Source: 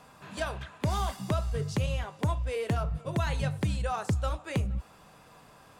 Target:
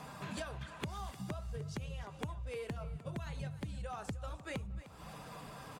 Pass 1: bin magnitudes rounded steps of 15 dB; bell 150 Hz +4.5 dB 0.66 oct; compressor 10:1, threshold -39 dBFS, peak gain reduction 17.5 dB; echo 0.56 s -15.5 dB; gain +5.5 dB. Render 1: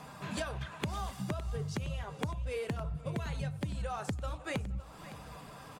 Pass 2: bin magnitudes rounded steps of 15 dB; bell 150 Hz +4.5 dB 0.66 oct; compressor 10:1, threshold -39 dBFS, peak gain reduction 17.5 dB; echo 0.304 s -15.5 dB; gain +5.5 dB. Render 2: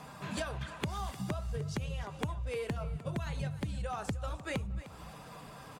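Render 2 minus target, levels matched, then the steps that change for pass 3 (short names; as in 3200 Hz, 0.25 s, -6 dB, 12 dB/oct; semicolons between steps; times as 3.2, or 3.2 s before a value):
compressor: peak gain reduction -5.5 dB
change: compressor 10:1, threshold -45 dBFS, peak gain reduction 23 dB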